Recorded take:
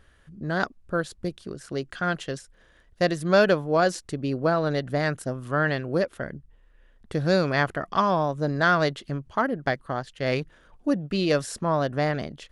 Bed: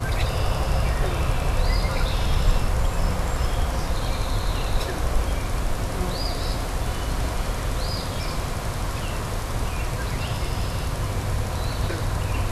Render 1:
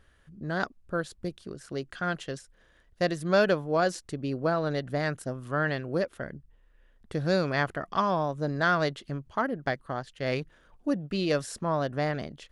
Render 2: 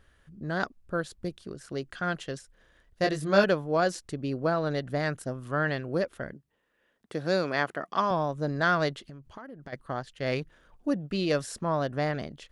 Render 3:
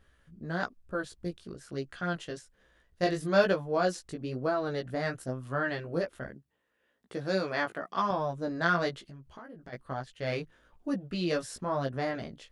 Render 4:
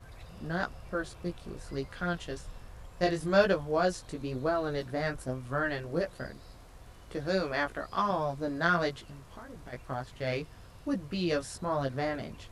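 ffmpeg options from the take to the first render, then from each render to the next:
ffmpeg -i in.wav -af "volume=-4dB" out.wav
ffmpeg -i in.wav -filter_complex "[0:a]asettb=1/sr,asplit=3[link_01][link_02][link_03];[link_01]atrim=end=3.024[link_04];[link_02]atrim=start=3.02:end=3.44,asetpts=PTS-STARTPTS,afade=type=in:duration=0.004:curve=qsin,afade=type=out:start_time=0.416:duration=0.004:curve=qsin,asplit=2[link_05][link_06];[link_06]adelay=20,volume=-4dB[link_07];[link_05][link_07]amix=inputs=2:normalize=0,atrim=end_sample=18522[link_08];[link_03]atrim=start=3.436[link_09];[link_04][link_08]acrossfade=duration=0.004:curve1=hsin:curve2=qsin[link_10];[link_10][link_09]acrossfade=duration=0.004:curve1=qsin:curve2=hsin,asettb=1/sr,asplit=3[link_11][link_12][link_13];[link_11]atrim=end=6.334[link_14];[link_12]atrim=start=6.33:end=8.11,asetpts=PTS-STARTPTS,afade=type=in:duration=0.004:curve=qsin,afade=type=out:start_time=1.776:duration=0.004:curve=qsin,highpass=210[link_15];[link_13]atrim=start=8.106[link_16];[link_14][link_15]acrossfade=duration=0.004:curve1=hsin:curve2=qsin[link_17];[link_17][link_16]acrossfade=duration=0.004:curve1=qsin:curve2=hsin,asplit=3[link_18][link_19][link_20];[link_18]afade=type=out:start_time=9.03:duration=0.02[link_21];[link_19]acompressor=threshold=-41dB:ratio=6:attack=3.2:release=140:knee=1:detection=peak,afade=type=in:start_time=9.03:duration=0.02,afade=type=out:start_time=9.72:duration=0.02[link_22];[link_20]afade=type=in:start_time=9.72:duration=0.02[link_23];[link_21][link_22][link_23]amix=inputs=3:normalize=0" out.wav
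ffmpeg -i in.wav -af "flanger=delay=15:depth=2.7:speed=1.1" out.wav
ffmpeg -i in.wav -i bed.wav -filter_complex "[1:a]volume=-25.5dB[link_01];[0:a][link_01]amix=inputs=2:normalize=0" out.wav

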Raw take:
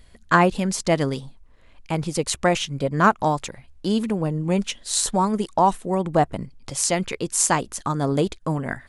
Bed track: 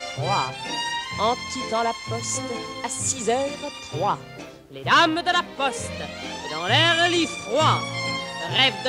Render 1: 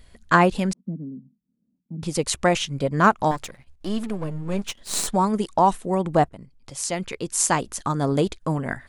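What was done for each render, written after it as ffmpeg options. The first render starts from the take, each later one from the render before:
ffmpeg -i in.wav -filter_complex "[0:a]asettb=1/sr,asplit=3[link_01][link_02][link_03];[link_01]atrim=end=0.734[link_04];[link_02]atrim=start=0.73:end=2.03,asetpts=PTS-STARTPTS,afade=type=in:duration=0.004:curve=qsin,afade=type=out:start_time=1.296:duration=0.004:curve=qsin,asuperpass=centerf=210:order=4:qfactor=2.6[link_05];[link_03]atrim=start=2.026[link_06];[link_04][link_05]acrossfade=duration=0.004:curve1=hsin:curve2=qsin[link_07];[link_07][link_06]acrossfade=duration=0.004:curve1=qsin:curve2=hsin,asettb=1/sr,asplit=3[link_08][link_09][link_10];[link_08]atrim=end=3.314[link_11];[link_09]atrim=start=3.31:end=5.08,asetpts=PTS-STARTPTS,afade=type=in:duration=0.004:curve=qsin,afade=type=out:start_time=1.766:duration=0.004:curve=qsin,aeval=exprs='if(lt(val(0),0),0.251*val(0),val(0))':channel_layout=same[link_12];[link_10]atrim=start=5.076[link_13];[link_11][link_12]acrossfade=duration=0.004:curve1=hsin:curve2=qsin[link_14];[link_14][link_13]acrossfade=duration=0.004:curve1=qsin:curve2=hsin,asplit=2[link_15][link_16];[link_15]atrim=end=6.29,asetpts=PTS-STARTPTS,afade=type=out:start_time=6.286:duration=0.004:curve=hsin:silence=0.199526[link_17];[link_16]atrim=start=6.29,asetpts=PTS-STARTPTS,afade=type=in:duration=1.41:silence=0.199526[link_18];[link_17][link_18]concat=n=2:v=0:a=1" out.wav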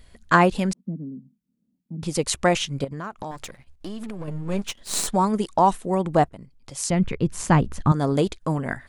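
ffmpeg -i in.wav -filter_complex "[0:a]asettb=1/sr,asplit=3[link_01][link_02][link_03];[link_01]atrim=end=2.844[link_04];[link_02]atrim=start=2.84:end=4.28,asetpts=PTS-STARTPTS,afade=type=in:duration=0.004:curve=qsin,afade=type=out:start_time=1.436:duration=0.004:curve=qsin,acompressor=threshold=-28dB:ratio=16:attack=3.2:release=140:knee=1:detection=peak[link_05];[link_03]atrim=start=4.276[link_06];[link_04][link_05]acrossfade=duration=0.004:curve1=hsin:curve2=qsin[link_07];[link_07][link_06]acrossfade=duration=0.004:curve1=qsin:curve2=hsin,asettb=1/sr,asplit=3[link_08][link_09][link_10];[link_08]atrim=end=6.904[link_11];[link_09]atrim=start=6.9:end=7.92,asetpts=PTS-STARTPTS,afade=type=in:duration=0.004:curve=qsin,afade=type=out:start_time=1.016:duration=0.004:curve=qsin,bass=frequency=250:gain=15,treble=frequency=4000:gain=-13[link_12];[link_10]atrim=start=7.916[link_13];[link_11][link_12]acrossfade=duration=0.004:curve1=hsin:curve2=qsin[link_14];[link_14][link_13]acrossfade=duration=0.004:curve1=qsin:curve2=hsin" out.wav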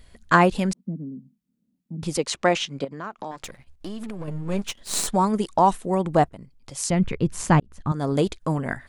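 ffmpeg -i in.wav -filter_complex "[0:a]asettb=1/sr,asplit=3[link_01][link_02][link_03];[link_01]atrim=end=2.174[link_04];[link_02]atrim=start=2.17:end=3.44,asetpts=PTS-STARTPTS,afade=type=in:duration=0.004:curve=qsin,afade=type=out:start_time=1.266:duration=0.004:curve=qsin,acrossover=split=170 7100:gain=0.126 1 0.141[link_05][link_06][link_07];[link_05][link_06][link_07]amix=inputs=3:normalize=0[link_08];[link_03]atrim=start=3.436[link_09];[link_04][link_08]acrossfade=duration=0.004:curve1=hsin:curve2=qsin[link_10];[link_10][link_09]acrossfade=duration=0.004:curve1=qsin:curve2=hsin,asplit=2[link_11][link_12];[link_11]atrim=end=7.6,asetpts=PTS-STARTPTS,afade=type=out:start_time=7.596:duration=0.004:curve=hsin[link_13];[link_12]atrim=start=7.6,asetpts=PTS-STARTPTS,afade=type=in:duration=0.62[link_14];[link_13][link_14]concat=n=2:v=0:a=1" out.wav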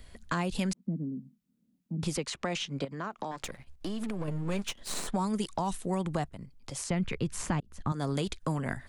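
ffmpeg -i in.wav -filter_complex "[0:a]alimiter=limit=-12dB:level=0:latency=1:release=131,acrossover=split=200|1100|2800[link_01][link_02][link_03][link_04];[link_01]acompressor=threshold=-33dB:ratio=4[link_05];[link_02]acompressor=threshold=-35dB:ratio=4[link_06];[link_03]acompressor=threshold=-41dB:ratio=4[link_07];[link_04]acompressor=threshold=-38dB:ratio=4[link_08];[link_05][link_06][link_07][link_08]amix=inputs=4:normalize=0" out.wav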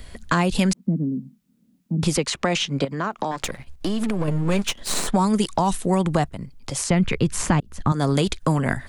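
ffmpeg -i in.wav -af "volume=11dB" out.wav

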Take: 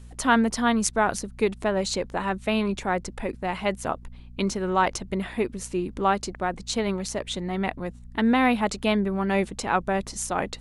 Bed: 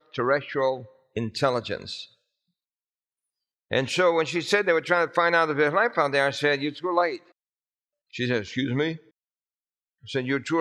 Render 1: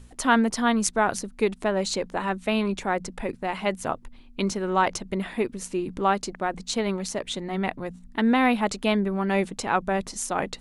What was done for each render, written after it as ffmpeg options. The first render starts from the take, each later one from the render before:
ffmpeg -i in.wav -af "bandreject=frequency=60:width_type=h:width=4,bandreject=frequency=120:width_type=h:width=4,bandreject=frequency=180:width_type=h:width=4" out.wav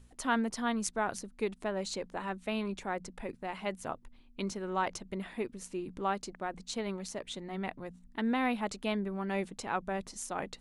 ffmpeg -i in.wav -af "volume=-10dB" out.wav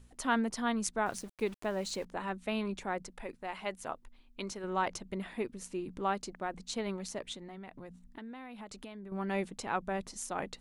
ffmpeg -i in.wav -filter_complex "[0:a]asettb=1/sr,asplit=3[link_01][link_02][link_03];[link_01]atrim=end=1.064[link_04];[link_02]atrim=start=1.06:end=2.05,asetpts=PTS-STARTPTS,afade=type=in:duration=0.004:curve=qsin,afade=type=out:start_time=0.986:duration=0.004:curve=qsin,aeval=exprs='val(0)*gte(abs(val(0)),0.00316)':channel_layout=same[link_05];[link_03]atrim=start=2.046[link_06];[link_04][link_05]acrossfade=duration=0.004:curve1=hsin:curve2=qsin[link_07];[link_07][link_06]acrossfade=duration=0.004:curve1=qsin:curve2=hsin,asettb=1/sr,asplit=3[link_08][link_09][link_10];[link_08]atrim=end=3.024[link_11];[link_09]atrim=start=3.02:end=4.64,asetpts=PTS-STARTPTS,afade=type=in:duration=0.004:curve=qsin,afade=type=out:start_time=1.616:duration=0.004:curve=qsin,equalizer=frequency=120:width=0.44:gain=-8[link_12];[link_10]atrim=start=4.636[link_13];[link_11][link_12]acrossfade=duration=0.004:curve1=hsin:curve2=qsin[link_14];[link_14][link_13]acrossfade=duration=0.004:curve1=qsin:curve2=hsin,asettb=1/sr,asplit=3[link_15][link_16][link_17];[link_15]atrim=end=7.334[link_18];[link_16]atrim=start=7.33:end=9.12,asetpts=PTS-STARTPTS,afade=type=in:duration=0.004:curve=qsin,afade=type=out:start_time=1.786:duration=0.004:curve=qsin,acompressor=threshold=-42dB:ratio=10:attack=3.2:release=140:knee=1:detection=peak[link_19];[link_17]atrim=start=9.116[link_20];[link_18][link_19]acrossfade=duration=0.004:curve1=hsin:curve2=qsin[link_21];[link_21][link_20]acrossfade=duration=0.004:curve1=qsin:curve2=hsin" out.wav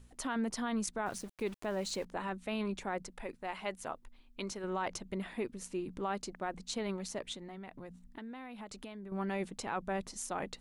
ffmpeg -i in.wav -af "alimiter=level_in=2dB:limit=-24dB:level=0:latency=1:release=15,volume=-2dB" out.wav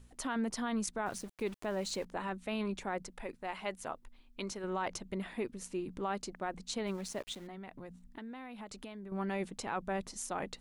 ffmpeg -i in.wav -filter_complex "[0:a]asplit=3[link_01][link_02][link_03];[link_01]afade=type=out:start_time=6.86:duration=0.02[link_04];[link_02]aeval=exprs='val(0)*gte(abs(val(0)),0.00266)':channel_layout=same,afade=type=in:start_time=6.86:duration=0.02,afade=type=out:start_time=7.46:duration=0.02[link_05];[link_03]afade=type=in:start_time=7.46:duration=0.02[link_06];[link_04][link_05][link_06]amix=inputs=3:normalize=0" out.wav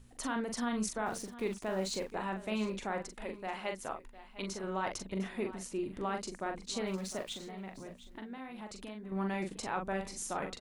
ffmpeg -i in.wav -filter_complex "[0:a]asplit=2[link_01][link_02];[link_02]adelay=42,volume=-5.5dB[link_03];[link_01][link_03]amix=inputs=2:normalize=0,aecho=1:1:705:0.168" out.wav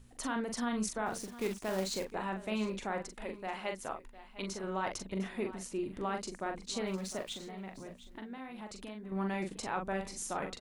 ffmpeg -i in.wav -filter_complex "[0:a]asettb=1/sr,asplit=3[link_01][link_02][link_03];[link_01]atrim=end=1.214[link_04];[link_02]atrim=start=1.21:end=2.05,asetpts=PTS-STARTPTS,afade=type=in:duration=0.004:curve=qsin,afade=type=out:start_time=0.836:duration=0.004:curve=qsin,acrusher=bits=3:mode=log:mix=0:aa=0.000001[link_05];[link_03]atrim=start=2.046[link_06];[link_04][link_05]acrossfade=duration=0.004:curve1=hsin:curve2=qsin[link_07];[link_07][link_06]acrossfade=duration=0.004:curve1=qsin:curve2=hsin" out.wav

